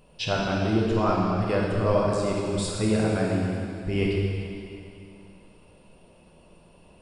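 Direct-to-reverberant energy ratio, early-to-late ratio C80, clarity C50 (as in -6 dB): -3.5 dB, 0.5 dB, -1.0 dB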